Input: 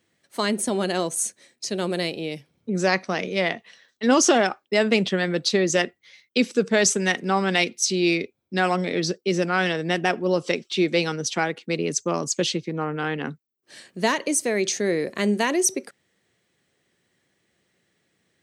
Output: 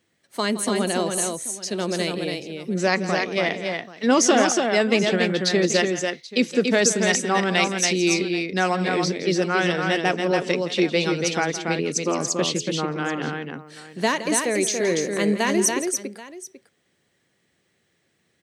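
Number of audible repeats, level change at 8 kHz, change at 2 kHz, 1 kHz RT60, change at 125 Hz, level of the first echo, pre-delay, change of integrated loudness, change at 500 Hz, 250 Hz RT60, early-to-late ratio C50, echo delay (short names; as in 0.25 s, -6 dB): 3, +1.5 dB, +1.5 dB, none, +1.0 dB, -14.0 dB, none, +1.0 dB, +1.5 dB, none, none, 0.167 s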